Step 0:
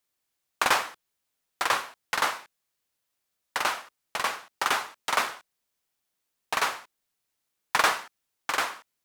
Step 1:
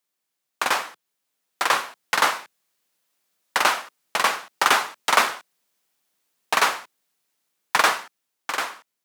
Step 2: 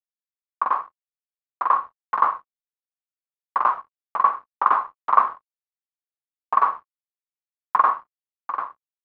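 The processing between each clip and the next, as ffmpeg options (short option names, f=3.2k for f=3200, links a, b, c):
-af "highpass=f=140:w=0.5412,highpass=f=140:w=1.3066,dynaudnorm=f=350:g=9:m=11.5dB"
-af "aresample=16000,aeval=exprs='sgn(val(0))*max(abs(val(0))-0.0141,0)':c=same,aresample=44100,lowpass=f=1.1k:t=q:w=9.1,volume=-9.5dB"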